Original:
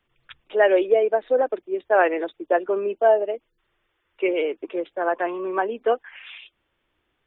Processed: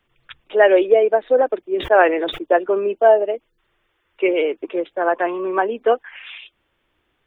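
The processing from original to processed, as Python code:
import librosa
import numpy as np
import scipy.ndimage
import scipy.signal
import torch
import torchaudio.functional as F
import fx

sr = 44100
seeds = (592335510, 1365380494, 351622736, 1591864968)

y = fx.sustainer(x, sr, db_per_s=100.0, at=(1.74, 2.44))
y = y * librosa.db_to_amplitude(4.5)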